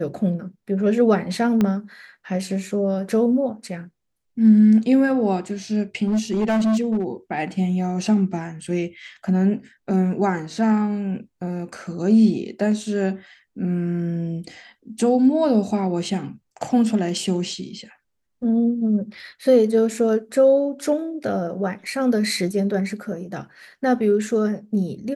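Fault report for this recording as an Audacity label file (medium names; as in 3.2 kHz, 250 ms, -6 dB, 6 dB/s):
1.610000	1.610000	pop -9 dBFS
6.070000	7.040000	clipped -16.5 dBFS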